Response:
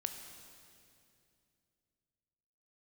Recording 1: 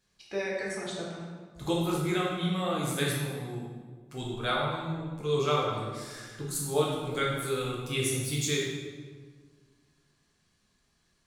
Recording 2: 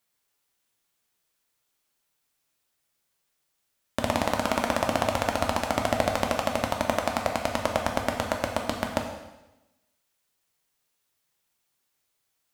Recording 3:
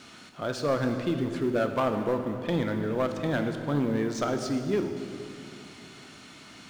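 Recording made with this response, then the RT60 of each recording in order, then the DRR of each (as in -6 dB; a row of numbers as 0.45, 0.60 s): 3; 1.6, 1.0, 2.6 s; -5.0, 1.5, 5.5 dB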